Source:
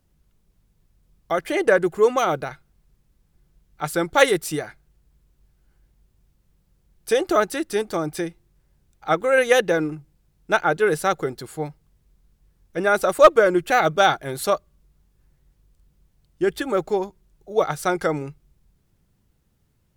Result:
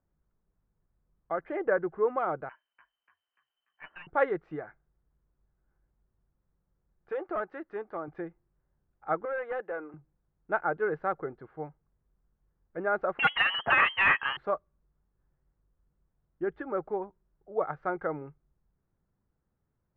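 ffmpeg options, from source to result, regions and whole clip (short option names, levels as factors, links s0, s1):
-filter_complex "[0:a]asettb=1/sr,asplit=3[s0][s1][s2];[s0]atrim=end=2.494[s3];[s1]atrim=start=2.49:end=4.07,asetpts=PTS-STARTPTS,afade=t=in:d=0.004:c=qsin,afade=t=out:st=1.576:d=0.004:c=qsin,lowpass=f=2600:t=q:w=0.5098,lowpass=f=2600:t=q:w=0.6013,lowpass=f=2600:t=q:w=0.9,lowpass=f=2600:t=q:w=2.563,afreqshift=-3100,aeval=exprs='(tanh(12.6*val(0)+0.2)-tanh(0.2))/12.6':c=same,asplit=7[s4][s5][s6][s7][s8][s9][s10];[s5]adelay=292,afreqshift=43,volume=0.447[s11];[s6]adelay=584,afreqshift=86,volume=0.219[s12];[s7]adelay=876,afreqshift=129,volume=0.107[s13];[s8]adelay=1168,afreqshift=172,volume=0.0525[s14];[s9]adelay=1460,afreqshift=215,volume=0.0257[s15];[s10]adelay=1752,afreqshift=258,volume=0.0126[s16];[s4][s11][s12][s13][s14][s15][s16]amix=inputs=7:normalize=0,atrim=end_sample=69678[s17];[s2]atrim=start=4.066[s18];[s3][s17]acrossfade=d=0.004:c1=hsin:c2=qsin[s19];[s19][s18]acrossfade=d=0.004:c1=qsin:c2=hsin,asettb=1/sr,asplit=3[s20][s21][s22];[s20]atrim=end=7.104[s23];[s21]atrim=start=7.1:end=8.08,asetpts=PTS-STARTPTS,afade=t=in:d=0.004:c=qsin,afade=t=out:st=0.976:d=0.004:c=qsin,lowshelf=f=270:g=-11,asoftclip=type=hard:threshold=0.126[s24];[s22]atrim=start=8.076[s25];[s23][s24]acrossfade=d=0.004:c1=hsin:c2=qsin[s26];[s26][s25]acrossfade=d=0.004:c1=qsin:c2=hsin,asettb=1/sr,asplit=3[s27][s28][s29];[s27]atrim=end=9.254[s30];[s28]atrim=start=9.25:end=9.94,asetpts=PTS-STARTPTS,afade=t=in:d=0.004:c=qsin,afade=t=out:st=0.686:d=0.004:c=qsin,highpass=490,lowpass=3300,aeval=exprs='(tanh(8.91*val(0)+0.05)-tanh(0.05))/8.91':c=same[s31];[s29]atrim=start=9.936[s32];[s30][s31]acrossfade=d=0.004:c1=hsin:c2=qsin[s33];[s33][s32]acrossfade=d=0.004:c1=qsin:c2=hsin,asettb=1/sr,asplit=3[s34][s35][s36];[s34]atrim=end=13.194[s37];[s35]atrim=start=13.19:end=14.37,asetpts=PTS-STARTPTS,afade=t=in:d=0.004:c=qsin,afade=t=out:st=1.176:d=0.004:c=qsin,lowpass=f=2800:t=q:w=0.5098,lowpass=f=2800:t=q:w=0.6013,lowpass=f=2800:t=q:w=0.9,lowpass=f=2800:t=q:w=2.563,afreqshift=-3300,aeval=exprs='1.12*sin(PI/2*3.55*val(0)/1.12)':c=same,acontrast=81[s38];[s36]atrim=start=14.366[s39];[s37][s38]acrossfade=d=0.004:c1=hsin:c2=qsin[s40];[s40][s39]acrossfade=d=0.004:c1=qsin:c2=hsin,lowpass=f=1600:w=0.5412,lowpass=f=1600:w=1.3066,lowshelf=f=360:g=-6.5,volume=0.422"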